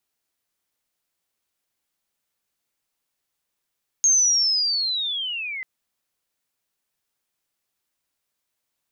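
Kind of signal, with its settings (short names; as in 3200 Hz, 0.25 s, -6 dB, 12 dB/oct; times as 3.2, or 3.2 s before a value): chirp linear 6500 Hz -> 2000 Hz -13.5 dBFS -> -28.5 dBFS 1.59 s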